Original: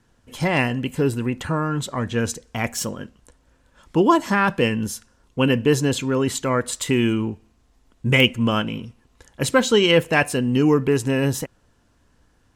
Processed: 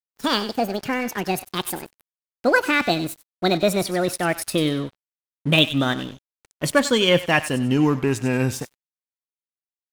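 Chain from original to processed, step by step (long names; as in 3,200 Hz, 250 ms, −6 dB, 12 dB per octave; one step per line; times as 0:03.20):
gliding playback speed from 173% → 80%
dynamic equaliser 440 Hz, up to −6 dB, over −35 dBFS, Q 6.5
on a send: feedback echo with a high-pass in the loop 95 ms, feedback 34%, high-pass 1,100 Hz, level −11 dB
on the sum: dead-zone distortion −38.5 dBFS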